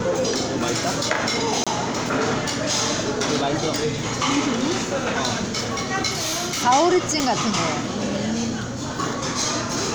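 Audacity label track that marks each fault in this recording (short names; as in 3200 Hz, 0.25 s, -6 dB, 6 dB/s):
1.640000	1.670000	gap 26 ms
3.760000	3.760000	pop
6.100000	6.640000	clipped -21.5 dBFS
7.200000	7.200000	pop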